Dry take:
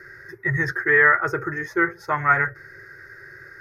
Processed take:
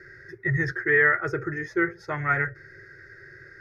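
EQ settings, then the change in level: distance through air 76 m; peaking EQ 1 kHz -12 dB 1 oct; 0.0 dB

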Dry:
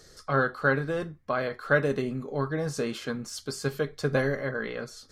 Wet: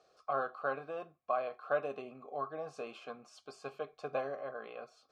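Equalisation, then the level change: dynamic bell 7.8 kHz, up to +4 dB, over -49 dBFS, Q 0.99; vowel filter a; +3.0 dB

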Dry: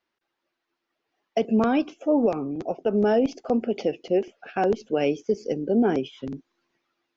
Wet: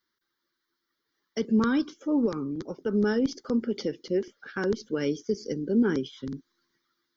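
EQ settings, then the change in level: treble shelf 4.3 kHz +10.5 dB; static phaser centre 2.6 kHz, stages 6; 0.0 dB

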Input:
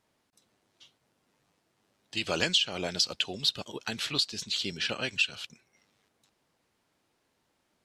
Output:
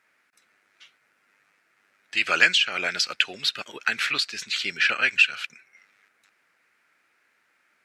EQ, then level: high-pass 450 Hz 6 dB/octave; high-order bell 1.8 kHz +13.5 dB 1.2 oct; +2.0 dB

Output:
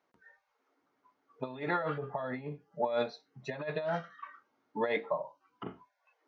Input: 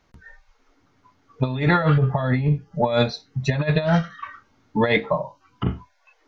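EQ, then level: high-pass 370 Hz 12 dB/octave; treble shelf 2.2 kHz -11.5 dB; -8.5 dB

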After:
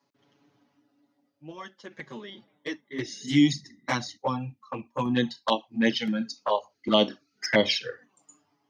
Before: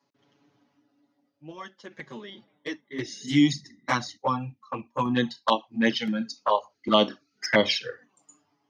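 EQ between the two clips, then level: dynamic bell 1.2 kHz, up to -7 dB, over -39 dBFS, Q 2; 0.0 dB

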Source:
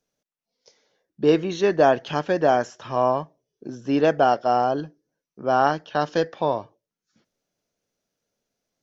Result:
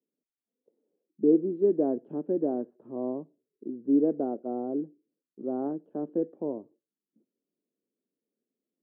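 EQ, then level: Butterworth band-pass 300 Hz, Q 1.5; distance through air 210 m; 0.0 dB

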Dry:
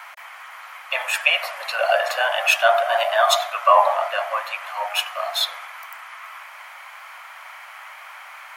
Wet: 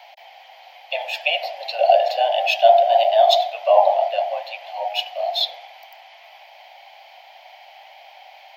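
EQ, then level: FFT filter 300 Hz 0 dB, 780 Hz +12 dB, 1.2 kHz -24 dB, 1.9 kHz -7 dB, 3.1 kHz +5 dB, 4.8 kHz +6 dB, 9.2 kHz -22 dB, 14 kHz -4 dB; -4.5 dB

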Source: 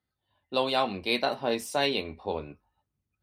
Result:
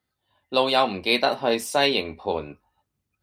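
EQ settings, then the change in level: bass shelf 180 Hz -5.5 dB; +6.5 dB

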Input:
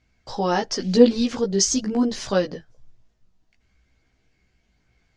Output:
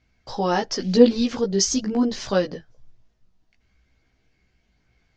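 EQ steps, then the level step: low-pass 6.8 kHz 24 dB/octave; 0.0 dB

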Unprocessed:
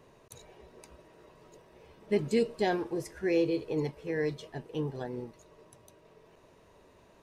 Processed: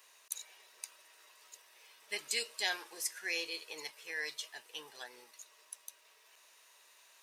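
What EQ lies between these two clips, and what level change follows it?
high-pass 1.5 kHz 12 dB/octave; treble shelf 3.2 kHz +9 dB; treble shelf 7.7 kHz +5 dB; +1.5 dB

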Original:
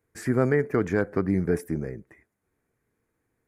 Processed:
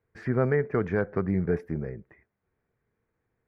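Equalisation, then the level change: distance through air 290 m; peaking EQ 290 Hz -7.5 dB 0.43 oct; 0.0 dB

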